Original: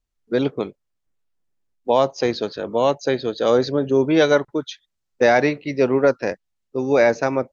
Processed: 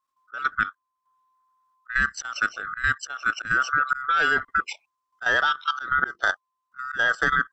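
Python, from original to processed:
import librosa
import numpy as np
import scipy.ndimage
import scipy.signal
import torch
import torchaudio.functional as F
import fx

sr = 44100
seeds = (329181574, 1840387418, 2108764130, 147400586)

y = fx.band_swap(x, sr, width_hz=1000)
y = fx.auto_swell(y, sr, attack_ms=227.0)
y = fx.level_steps(y, sr, step_db=12)
y = y * librosa.db_to_amplitude(3.5)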